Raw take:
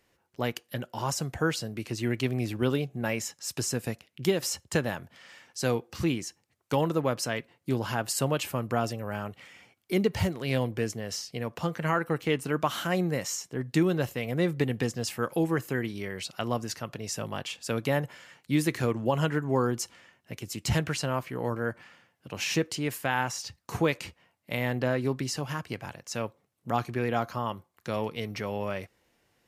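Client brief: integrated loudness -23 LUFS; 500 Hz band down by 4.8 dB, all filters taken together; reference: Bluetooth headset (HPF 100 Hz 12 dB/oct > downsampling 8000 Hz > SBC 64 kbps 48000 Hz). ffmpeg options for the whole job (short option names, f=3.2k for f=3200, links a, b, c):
-af "highpass=100,equalizer=f=500:t=o:g=-6,aresample=8000,aresample=44100,volume=10dB" -ar 48000 -c:a sbc -b:a 64k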